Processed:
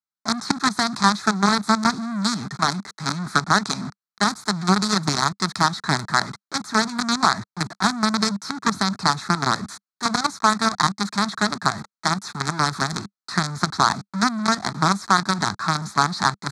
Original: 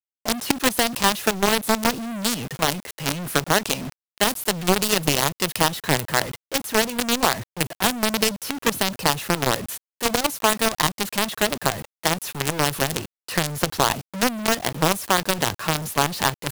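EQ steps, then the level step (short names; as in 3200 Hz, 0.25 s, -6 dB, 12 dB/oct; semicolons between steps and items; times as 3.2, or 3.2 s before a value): speaker cabinet 120–7100 Hz, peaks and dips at 200 Hz +7 dB, 460 Hz +7 dB, 1300 Hz +7 dB, 4100 Hz +10 dB; fixed phaser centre 1200 Hz, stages 4; +2.0 dB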